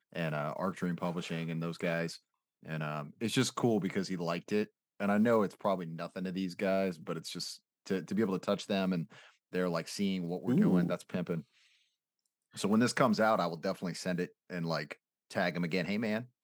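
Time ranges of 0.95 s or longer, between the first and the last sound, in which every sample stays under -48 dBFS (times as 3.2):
11.42–12.55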